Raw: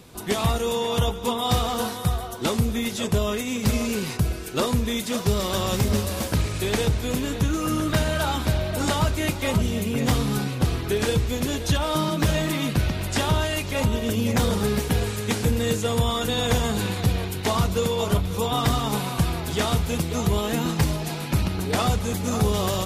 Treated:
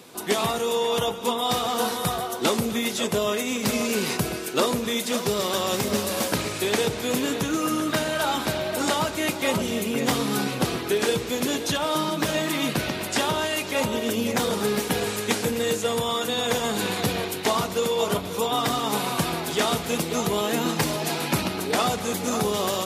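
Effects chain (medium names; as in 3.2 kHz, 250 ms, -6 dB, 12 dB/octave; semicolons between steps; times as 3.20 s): high-pass 250 Hz 12 dB/octave; gain riding 0.5 s; on a send: echo whose repeats swap between lows and highs 126 ms, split 900 Hz, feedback 57%, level -13 dB; on the sum: trim +2 dB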